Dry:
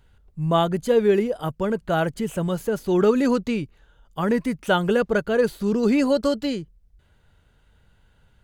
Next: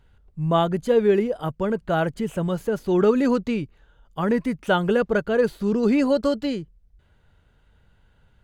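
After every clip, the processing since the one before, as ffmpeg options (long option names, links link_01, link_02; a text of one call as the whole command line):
ffmpeg -i in.wav -af "highshelf=frequency=4900:gain=-7.5" out.wav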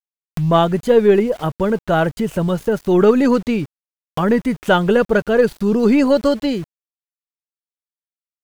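ffmpeg -i in.wav -af "aeval=exprs='0.447*(cos(1*acos(clip(val(0)/0.447,-1,1)))-cos(1*PI/2))+0.01*(cos(6*acos(clip(val(0)/0.447,-1,1)))-cos(6*PI/2))':channel_layout=same,aeval=exprs='val(0)*gte(abs(val(0)),0.00841)':channel_layout=same,acompressor=mode=upward:threshold=-23dB:ratio=2.5,volume=6dB" out.wav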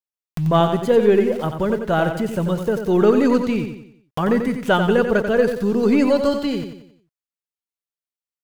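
ffmpeg -i in.wav -af "aecho=1:1:90|180|270|360|450:0.422|0.177|0.0744|0.0312|0.0131,volume=-3dB" out.wav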